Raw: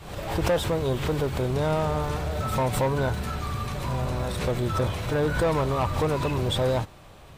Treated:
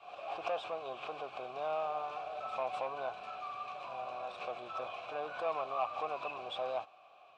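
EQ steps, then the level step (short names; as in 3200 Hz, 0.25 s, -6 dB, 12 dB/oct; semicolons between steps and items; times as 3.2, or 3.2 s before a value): vowel filter a; air absorption 120 m; tilt +3.5 dB/oct; +1.5 dB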